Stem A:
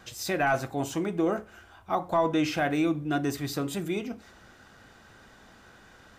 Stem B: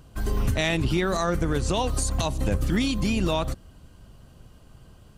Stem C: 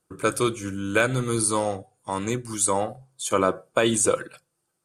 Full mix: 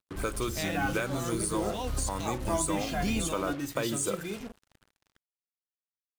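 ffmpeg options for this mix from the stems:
-filter_complex "[0:a]highshelf=f=4900:g=7,bandreject=f=60:t=h:w=6,bandreject=f=120:t=h:w=6,bandreject=f=180:t=h:w=6,bandreject=f=240:t=h:w=6,bandreject=f=300:t=h:w=6,bandreject=f=360:t=h:w=6,bandreject=f=420:t=h:w=6,asplit=2[s0][s1];[s1]adelay=2.5,afreqshift=0.78[s2];[s0][s2]amix=inputs=2:normalize=1,adelay=350,volume=0.596[s3];[1:a]volume=0.562[s4];[2:a]acompressor=threshold=0.0158:ratio=2,volume=0.944,asplit=2[s5][s6];[s6]apad=whole_len=228129[s7];[s4][s7]sidechaincompress=threshold=0.01:ratio=8:attack=25:release=251[s8];[s3][s8][s5]amix=inputs=3:normalize=0,acrusher=bits=6:mix=0:aa=0.5"

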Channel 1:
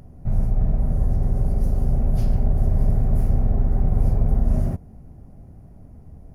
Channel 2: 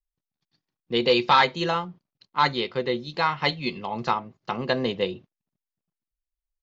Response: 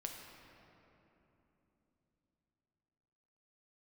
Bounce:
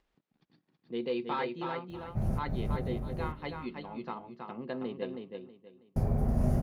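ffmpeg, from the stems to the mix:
-filter_complex "[0:a]adelay=1900,volume=0.794,asplit=3[s0][s1][s2];[s0]atrim=end=3,asetpts=PTS-STARTPTS,afade=t=out:st=2.996:d=0.004:c=hsin[s3];[s1]atrim=start=3:end=5.96,asetpts=PTS-STARTPTS,volume=0[s4];[s2]atrim=start=5.96,asetpts=PTS-STARTPTS,afade=t=in:d=0.004:c=hsin[s5];[s3][s4][s5]concat=n=3:v=0:a=1,asplit=2[s6][s7];[s7]volume=0.473[s8];[1:a]lowpass=2900,equalizer=f=250:w=0.67:g=11,volume=0.126,asplit=3[s9][s10][s11];[s10]volume=0.562[s12];[s11]apad=whole_len=363413[s13];[s6][s13]sidechaincompress=threshold=0.00631:ratio=8:attack=7.9:release=108[s14];[s8][s12]amix=inputs=2:normalize=0,aecho=0:1:322|644|966|1288:1|0.23|0.0529|0.0122[s15];[s14][s9][s15]amix=inputs=3:normalize=0,highpass=f=140:p=1,acompressor=mode=upward:threshold=0.00355:ratio=2.5"

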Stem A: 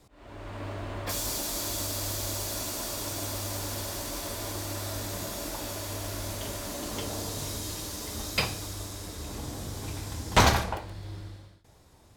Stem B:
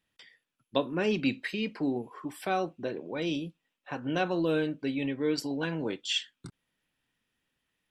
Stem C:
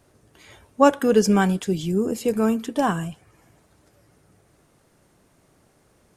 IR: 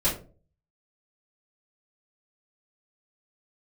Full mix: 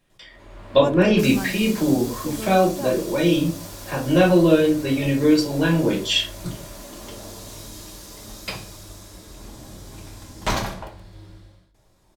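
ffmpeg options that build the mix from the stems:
-filter_complex "[0:a]adelay=100,volume=0.562,asplit=2[s0][s1];[s1]volume=0.141[s2];[1:a]volume=1.19,asplit=2[s3][s4];[s4]volume=0.668[s5];[2:a]volume=0.237[s6];[3:a]atrim=start_sample=2205[s7];[s2][s5]amix=inputs=2:normalize=0[s8];[s8][s7]afir=irnorm=-1:irlink=0[s9];[s0][s3][s6][s9]amix=inputs=4:normalize=0"

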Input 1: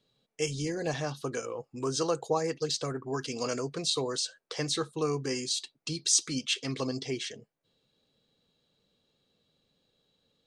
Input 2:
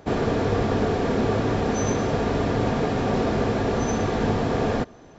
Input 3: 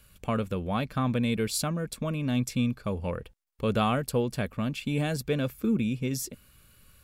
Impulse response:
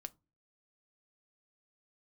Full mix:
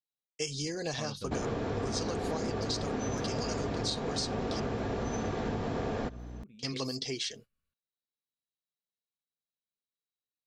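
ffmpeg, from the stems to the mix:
-filter_complex "[0:a]equalizer=f=4700:t=o:w=1.2:g=9.5,agate=range=0.0224:threshold=0.01:ratio=3:detection=peak,volume=0.75,asplit=3[s0][s1][s2];[s0]atrim=end=4.6,asetpts=PTS-STARTPTS,afade=t=out:st=4.596:d=0.004:c=hsin[s3];[s1]atrim=start=4.6:end=6.59,asetpts=PTS-STARTPTS,volume=0[s4];[s2]atrim=start=6.59,asetpts=PTS-STARTPTS,afade=t=in:d=0.004:c=hsin[s5];[s3][s4][s5]concat=n=3:v=0:a=1,asplit=2[s6][s7];[1:a]aeval=exprs='val(0)+0.0141*(sin(2*PI*60*n/s)+sin(2*PI*2*60*n/s)/2+sin(2*PI*3*60*n/s)/3+sin(2*PI*4*60*n/s)/4+sin(2*PI*5*60*n/s)/5)':c=same,adelay=1250,volume=0.596[s8];[2:a]lowpass=f=4000:p=1,adelay=700,volume=0.2,asplit=2[s9][s10];[s10]volume=0.251[s11];[s7]apad=whole_len=341122[s12];[s9][s12]sidechaingate=range=0.0224:threshold=0.00316:ratio=16:detection=peak[s13];[3:a]atrim=start_sample=2205[s14];[s11][s14]afir=irnorm=-1:irlink=0[s15];[s6][s8][s13][s15]amix=inputs=4:normalize=0,acompressor=threshold=0.0316:ratio=6"

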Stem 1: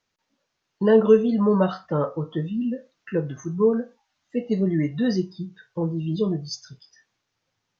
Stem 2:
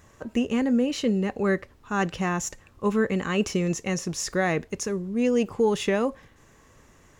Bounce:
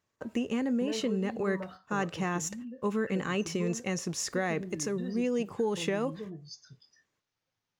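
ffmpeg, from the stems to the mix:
-filter_complex "[0:a]acompressor=threshold=0.0158:ratio=2,volume=0.355[s0];[1:a]highpass=110,agate=range=0.0631:threshold=0.00447:ratio=16:detection=peak,acompressor=threshold=0.0562:ratio=2.5,volume=0.708[s1];[s0][s1]amix=inputs=2:normalize=0"

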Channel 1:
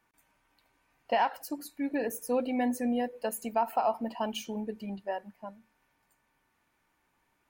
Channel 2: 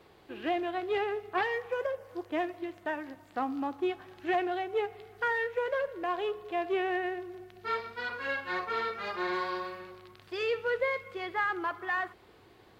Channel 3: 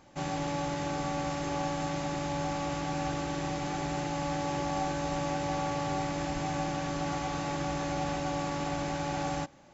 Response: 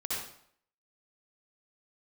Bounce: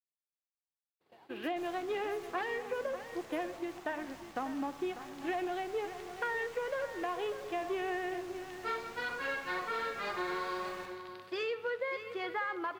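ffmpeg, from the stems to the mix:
-filter_complex "[0:a]volume=0.141[s0];[1:a]highpass=140,acompressor=threshold=0.02:ratio=4,adelay=1000,volume=1.06,asplit=2[s1][s2];[s2]volume=0.251[s3];[2:a]equalizer=f=200:t=o:w=0.9:g=-12.5,aeval=exprs='0.0188*(abs(mod(val(0)/0.0188+3,4)-2)-1)':c=same,aeval=exprs='0.0188*(cos(1*acos(clip(val(0)/0.0188,-1,1)))-cos(1*PI/2))+0.00335*(cos(8*acos(clip(val(0)/0.0188,-1,1)))-cos(8*PI/2))':c=same,adelay=1400,volume=0.237,asplit=2[s4][s5];[s5]volume=0.316[s6];[s0][s4]amix=inputs=2:normalize=0,acompressor=threshold=0.002:ratio=6,volume=1[s7];[3:a]atrim=start_sample=2205[s8];[s6][s8]afir=irnorm=-1:irlink=0[s9];[s3]aecho=0:1:595:1[s10];[s1][s7][s9][s10]amix=inputs=4:normalize=0,agate=range=0.0224:threshold=0.00447:ratio=3:detection=peak"

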